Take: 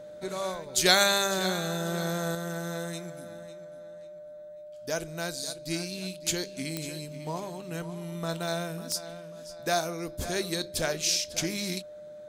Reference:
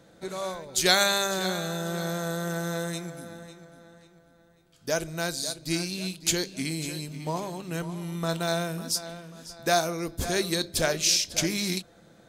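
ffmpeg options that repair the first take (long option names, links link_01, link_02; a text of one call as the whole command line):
ffmpeg -i in.wav -af "adeclick=threshold=4,bandreject=frequency=600:width=30,asetnsamples=nb_out_samples=441:pad=0,asendcmd='2.35 volume volume 4dB',volume=0dB" out.wav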